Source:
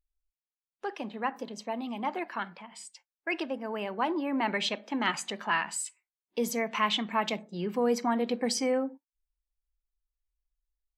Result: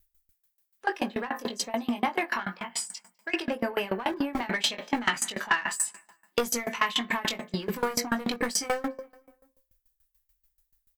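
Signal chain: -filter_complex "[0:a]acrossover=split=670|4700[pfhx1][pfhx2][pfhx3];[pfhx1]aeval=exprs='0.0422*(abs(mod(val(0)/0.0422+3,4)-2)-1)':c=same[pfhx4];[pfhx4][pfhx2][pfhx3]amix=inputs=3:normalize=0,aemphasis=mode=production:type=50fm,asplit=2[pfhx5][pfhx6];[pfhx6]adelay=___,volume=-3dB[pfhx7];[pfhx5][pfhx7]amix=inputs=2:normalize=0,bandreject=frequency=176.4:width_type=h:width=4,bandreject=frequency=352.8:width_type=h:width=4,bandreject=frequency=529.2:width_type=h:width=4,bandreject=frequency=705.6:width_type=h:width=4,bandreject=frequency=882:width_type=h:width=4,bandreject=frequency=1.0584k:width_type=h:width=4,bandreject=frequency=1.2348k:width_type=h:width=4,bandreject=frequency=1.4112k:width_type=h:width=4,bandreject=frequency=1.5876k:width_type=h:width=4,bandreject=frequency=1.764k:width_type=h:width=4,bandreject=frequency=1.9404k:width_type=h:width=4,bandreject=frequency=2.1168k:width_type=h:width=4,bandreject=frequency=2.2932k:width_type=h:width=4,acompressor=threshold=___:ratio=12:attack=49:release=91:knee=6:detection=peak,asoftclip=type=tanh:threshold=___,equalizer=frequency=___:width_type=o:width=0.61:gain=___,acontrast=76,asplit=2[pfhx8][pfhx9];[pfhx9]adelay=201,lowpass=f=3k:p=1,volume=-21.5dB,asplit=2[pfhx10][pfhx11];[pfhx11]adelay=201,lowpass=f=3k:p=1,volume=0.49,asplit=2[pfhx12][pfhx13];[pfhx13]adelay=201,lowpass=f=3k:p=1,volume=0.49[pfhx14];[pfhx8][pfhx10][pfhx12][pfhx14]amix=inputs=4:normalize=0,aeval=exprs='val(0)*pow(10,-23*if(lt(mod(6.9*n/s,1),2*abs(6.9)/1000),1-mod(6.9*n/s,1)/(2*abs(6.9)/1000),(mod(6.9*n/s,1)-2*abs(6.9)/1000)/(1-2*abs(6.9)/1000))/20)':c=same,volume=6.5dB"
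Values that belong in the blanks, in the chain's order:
21, -35dB, -26.5dB, 1.7k, 5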